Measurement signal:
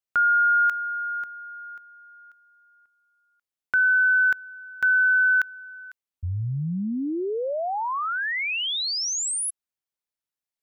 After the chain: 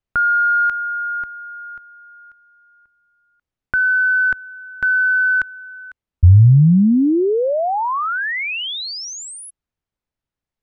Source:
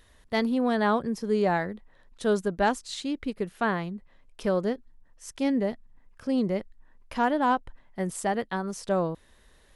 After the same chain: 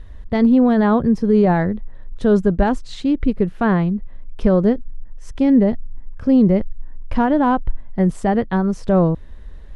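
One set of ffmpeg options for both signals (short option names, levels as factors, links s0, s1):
-af "alimiter=limit=0.126:level=0:latency=1:release=34,acontrast=53,aemphasis=mode=reproduction:type=riaa,volume=1.12"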